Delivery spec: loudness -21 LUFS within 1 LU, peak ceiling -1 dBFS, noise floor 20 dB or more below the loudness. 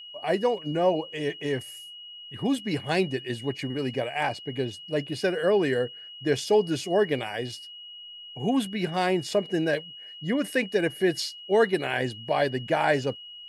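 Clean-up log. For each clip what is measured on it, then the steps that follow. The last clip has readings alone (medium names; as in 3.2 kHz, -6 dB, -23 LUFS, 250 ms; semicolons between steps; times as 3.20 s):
steady tone 2.9 kHz; tone level -41 dBFS; loudness -27.0 LUFS; peak level -10.5 dBFS; loudness target -21.0 LUFS
-> band-stop 2.9 kHz, Q 30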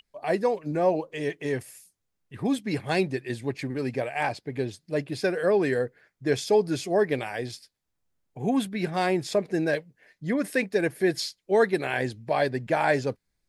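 steady tone not found; loudness -27.0 LUFS; peak level -10.5 dBFS; loudness target -21.0 LUFS
-> trim +6 dB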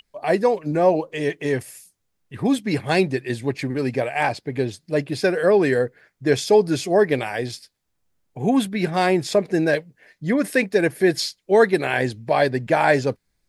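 loudness -21.0 LUFS; peak level -4.5 dBFS; noise floor -73 dBFS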